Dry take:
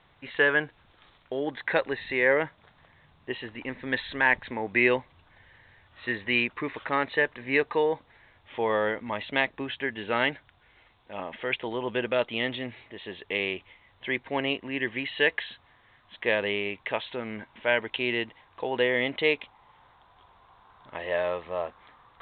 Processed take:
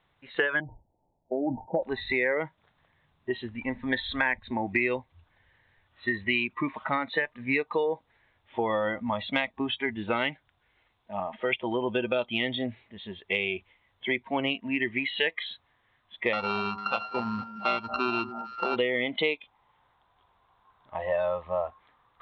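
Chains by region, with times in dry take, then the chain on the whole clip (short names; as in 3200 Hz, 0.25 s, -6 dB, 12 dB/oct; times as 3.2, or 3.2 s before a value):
0.6–1.83 rippled Chebyshev low-pass 920 Hz, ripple 3 dB + sustainer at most 130 dB/s
16.33–18.76 sample sorter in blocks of 32 samples + steep low-pass 3600 Hz + echo with dull and thin repeats by turns 0.225 s, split 1200 Hz, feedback 64%, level -11.5 dB
whole clip: spectral noise reduction 16 dB; dynamic EQ 960 Hz, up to -3 dB, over -36 dBFS, Q 1.1; compressor 5:1, threshold -31 dBFS; gain +7 dB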